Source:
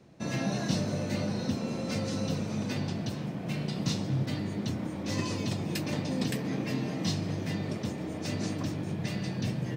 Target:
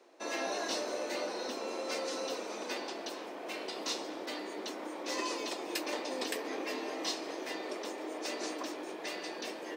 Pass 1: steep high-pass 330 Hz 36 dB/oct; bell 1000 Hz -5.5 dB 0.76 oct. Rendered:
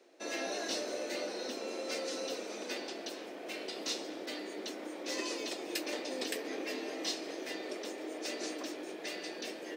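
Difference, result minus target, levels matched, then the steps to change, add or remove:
1000 Hz band -4.5 dB
change: bell 1000 Hz +3.5 dB 0.76 oct

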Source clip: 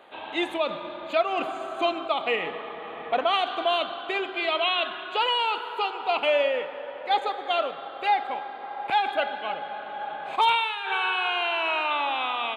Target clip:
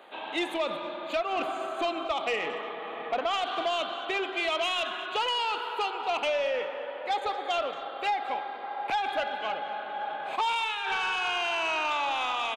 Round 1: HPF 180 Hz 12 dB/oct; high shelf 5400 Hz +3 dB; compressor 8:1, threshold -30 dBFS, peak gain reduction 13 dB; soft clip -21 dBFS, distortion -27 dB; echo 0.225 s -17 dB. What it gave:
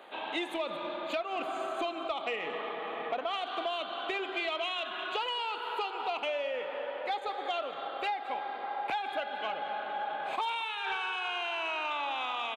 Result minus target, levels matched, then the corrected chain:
compressor: peak gain reduction +7 dB
HPF 180 Hz 12 dB/oct; high shelf 5400 Hz +3 dB; compressor 8:1, threshold -22 dBFS, peak gain reduction 6 dB; soft clip -21 dBFS, distortion -17 dB; echo 0.225 s -17 dB

